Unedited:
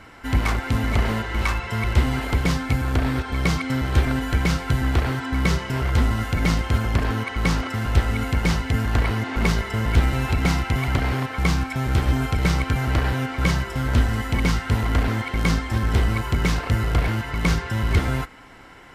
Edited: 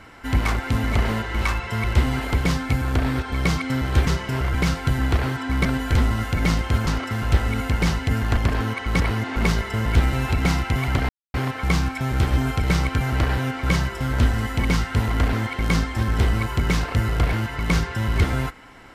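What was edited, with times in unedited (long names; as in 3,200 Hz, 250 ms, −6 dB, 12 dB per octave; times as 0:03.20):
0:04.07–0:04.37: swap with 0:05.48–0:05.95
0:06.87–0:07.50: move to 0:09.00
0:11.09: splice in silence 0.25 s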